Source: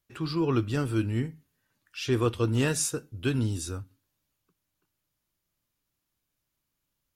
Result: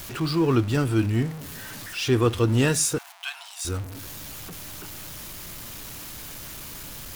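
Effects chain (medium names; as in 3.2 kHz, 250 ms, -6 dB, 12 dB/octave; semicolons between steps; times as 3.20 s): jump at every zero crossing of -36 dBFS; 2.98–3.65 s: rippled Chebyshev high-pass 680 Hz, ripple 3 dB; trim +4 dB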